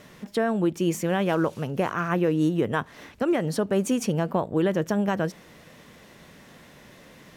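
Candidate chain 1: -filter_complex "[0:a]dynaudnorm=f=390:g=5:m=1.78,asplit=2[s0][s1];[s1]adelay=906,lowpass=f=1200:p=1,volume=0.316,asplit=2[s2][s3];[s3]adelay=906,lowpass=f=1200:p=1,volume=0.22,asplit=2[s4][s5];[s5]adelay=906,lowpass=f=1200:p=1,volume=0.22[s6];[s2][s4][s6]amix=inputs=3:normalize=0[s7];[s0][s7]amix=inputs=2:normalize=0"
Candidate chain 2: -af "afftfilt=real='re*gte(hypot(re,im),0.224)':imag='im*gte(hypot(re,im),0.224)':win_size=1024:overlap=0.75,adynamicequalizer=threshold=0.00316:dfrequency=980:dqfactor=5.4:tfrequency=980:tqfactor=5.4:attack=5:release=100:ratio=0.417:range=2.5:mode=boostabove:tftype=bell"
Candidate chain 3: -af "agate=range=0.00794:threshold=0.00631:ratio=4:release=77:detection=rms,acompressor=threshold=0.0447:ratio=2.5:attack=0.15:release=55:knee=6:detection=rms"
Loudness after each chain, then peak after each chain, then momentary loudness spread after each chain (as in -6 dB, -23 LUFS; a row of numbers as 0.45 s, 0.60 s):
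-21.5 LUFS, -26.5 LUFS, -31.5 LUFS; -6.0 dBFS, -13.5 dBFS, -21.0 dBFS; 12 LU, 6 LU, 5 LU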